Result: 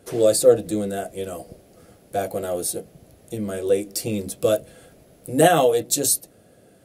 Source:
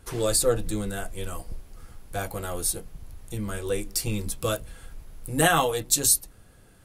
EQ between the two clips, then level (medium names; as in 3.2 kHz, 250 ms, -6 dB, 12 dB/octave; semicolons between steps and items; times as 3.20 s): high-pass 170 Hz 12 dB/octave; resonant low shelf 780 Hz +6 dB, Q 3; 0.0 dB